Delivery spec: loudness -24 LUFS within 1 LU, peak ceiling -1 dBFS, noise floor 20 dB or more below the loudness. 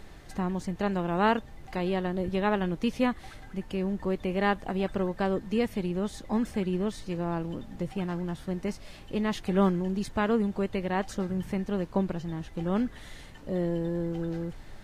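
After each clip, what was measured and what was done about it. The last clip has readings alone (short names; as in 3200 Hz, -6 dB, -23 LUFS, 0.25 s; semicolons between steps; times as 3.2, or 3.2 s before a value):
noise floor -47 dBFS; noise floor target -51 dBFS; loudness -30.5 LUFS; peak -12.5 dBFS; loudness target -24.0 LUFS
-> noise print and reduce 6 dB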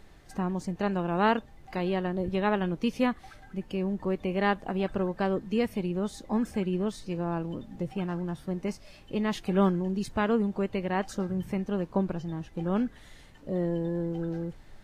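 noise floor -52 dBFS; loudness -30.5 LUFS; peak -12.5 dBFS; loudness target -24.0 LUFS
-> gain +6.5 dB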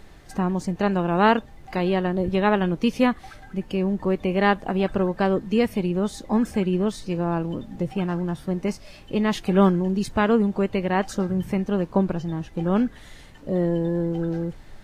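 loudness -24.0 LUFS; peak -6.0 dBFS; noise floor -46 dBFS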